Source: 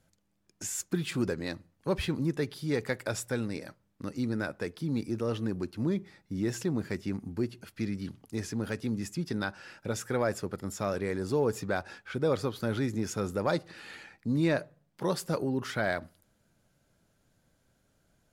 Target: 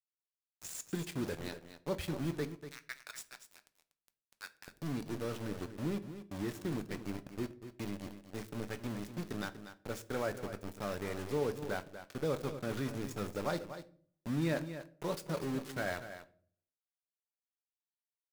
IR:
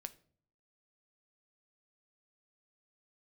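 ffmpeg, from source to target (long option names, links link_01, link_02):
-filter_complex "[0:a]asettb=1/sr,asplit=3[link_01][link_02][link_03];[link_01]atrim=end=2.454[link_04];[link_02]atrim=start=2.45:end=4.68,asetpts=PTS-STARTPTS,afade=type=in:duration=0.004:curve=qsin,afade=type=out:start_time=2.226:duration=0.004:curve=qsin,highpass=frequency=1200:width=0.5412,highpass=frequency=1200:width=1.3066[link_05];[link_03]atrim=start=4.676[link_06];[link_04][link_05]acrossfade=duration=0.004:curve1=hsin:curve2=qsin[link_07];[link_07][link_06]acrossfade=duration=0.004:curve1=qsin:curve2=hsin,aeval=exprs='val(0)*gte(abs(val(0)),0.0224)':channel_layout=same,aecho=1:1:241:0.282[link_08];[1:a]atrim=start_sample=2205[link_09];[link_08][link_09]afir=irnorm=-1:irlink=0,volume=-2.5dB"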